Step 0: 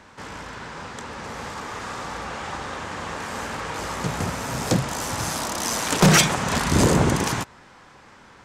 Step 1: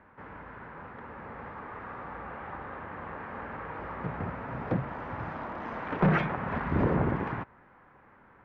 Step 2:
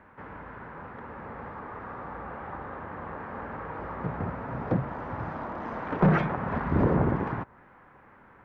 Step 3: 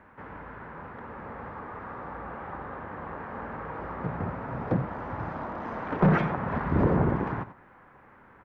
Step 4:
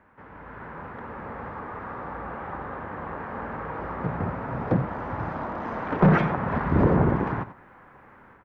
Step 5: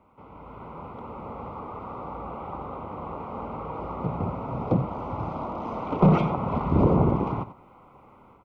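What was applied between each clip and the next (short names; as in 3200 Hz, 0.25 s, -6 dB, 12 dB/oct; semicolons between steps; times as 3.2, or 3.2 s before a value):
LPF 2000 Hz 24 dB/oct; gain -8 dB
dynamic EQ 2600 Hz, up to -6 dB, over -52 dBFS, Q 0.92; gain +3 dB
echo 91 ms -13.5 dB
AGC gain up to 8 dB; gain -4.5 dB
Butterworth band-stop 1700 Hz, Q 1.7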